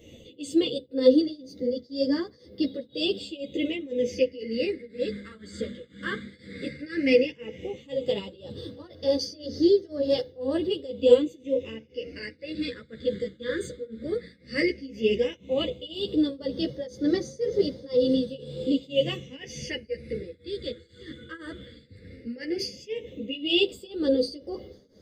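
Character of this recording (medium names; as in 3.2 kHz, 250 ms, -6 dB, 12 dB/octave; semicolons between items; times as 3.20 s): phasing stages 8, 0.13 Hz, lowest notch 770–2600 Hz; tremolo triangle 2 Hz, depth 95%; a shimmering, thickened sound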